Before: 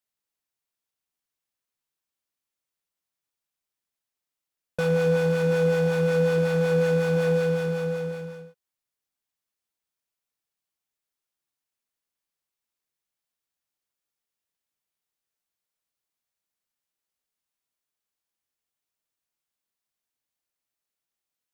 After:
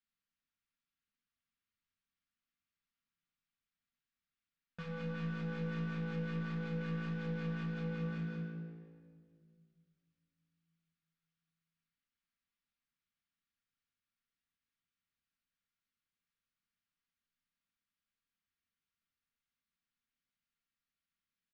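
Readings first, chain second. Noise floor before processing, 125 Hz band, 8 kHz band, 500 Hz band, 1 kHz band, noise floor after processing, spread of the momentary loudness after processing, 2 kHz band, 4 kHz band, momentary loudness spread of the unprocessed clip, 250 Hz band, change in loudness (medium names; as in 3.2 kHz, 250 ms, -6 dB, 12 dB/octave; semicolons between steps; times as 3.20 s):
under -85 dBFS, -12.0 dB, under -25 dB, -25.0 dB, -14.0 dB, under -85 dBFS, 10 LU, -14.5 dB, -15.0 dB, 9 LU, -10.5 dB, -16.5 dB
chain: tracing distortion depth 0.037 ms; high-order bell 560 Hz -15.5 dB; peak limiter -29 dBFS, peak gain reduction 10.5 dB; saturation -37 dBFS, distortion -13 dB; distance through air 200 m; on a send: frequency-shifting echo 91 ms, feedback 62%, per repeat +56 Hz, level -14.5 dB; on the sum: simulated room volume 3400 m³, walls mixed, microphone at 1.7 m; trim -1 dB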